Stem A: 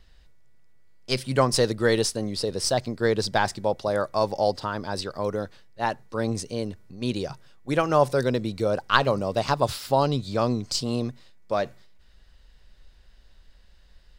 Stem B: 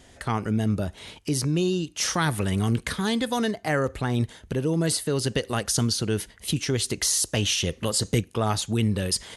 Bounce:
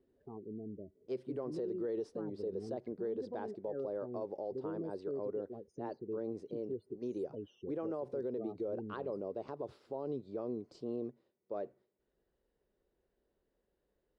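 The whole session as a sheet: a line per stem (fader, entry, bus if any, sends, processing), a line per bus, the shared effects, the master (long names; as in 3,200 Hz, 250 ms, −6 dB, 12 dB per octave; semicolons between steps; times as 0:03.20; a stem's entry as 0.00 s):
−4.0 dB, 0.00 s, no send, no processing
−9.0 dB, 0.00 s, no send, adaptive Wiener filter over 41 samples; spectral peaks only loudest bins 16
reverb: not used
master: resonant band-pass 390 Hz, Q 2.8; brickwall limiter −30.5 dBFS, peak gain reduction 11.5 dB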